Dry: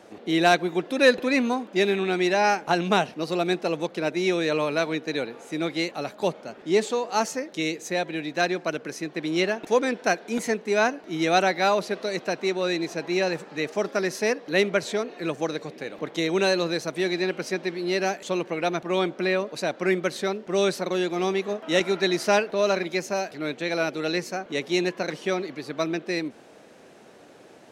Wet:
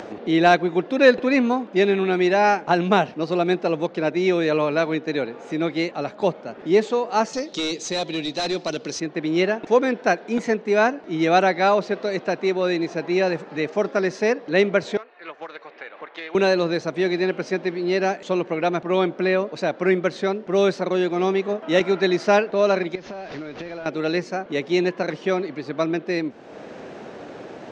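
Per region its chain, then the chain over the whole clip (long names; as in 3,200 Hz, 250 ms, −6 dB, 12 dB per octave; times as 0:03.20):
0:07.33–0:09.00: high shelf with overshoot 2,800 Hz +12.5 dB, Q 1.5 + notch filter 1,600 Hz, Q 14 + gain into a clipping stage and back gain 22 dB
0:14.97–0:16.35: high-pass filter 1,300 Hz + head-to-tape spacing loss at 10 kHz 35 dB + highs frequency-modulated by the lows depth 0.1 ms
0:22.95–0:23.86: linear delta modulator 32 kbit/s, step −36.5 dBFS + downward compressor 10 to 1, threshold −35 dBFS
whole clip: low-pass filter 6,900 Hz 24 dB per octave; high-shelf EQ 3,300 Hz −10.5 dB; upward compression, threshold −32 dBFS; level +4.5 dB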